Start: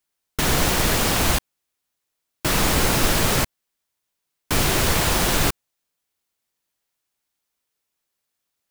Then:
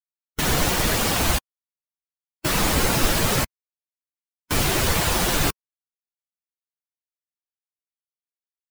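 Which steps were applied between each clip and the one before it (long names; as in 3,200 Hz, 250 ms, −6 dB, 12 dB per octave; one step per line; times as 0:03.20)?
spectral dynamics exaggerated over time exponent 1.5
level +1.5 dB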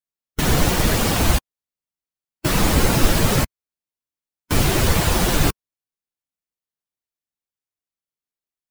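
low-shelf EQ 460 Hz +6.5 dB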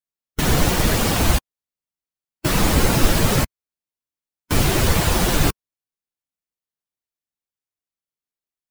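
no processing that can be heard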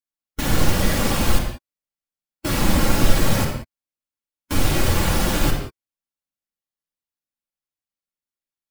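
convolution reverb, pre-delay 4 ms, DRR −0.5 dB
level −5.5 dB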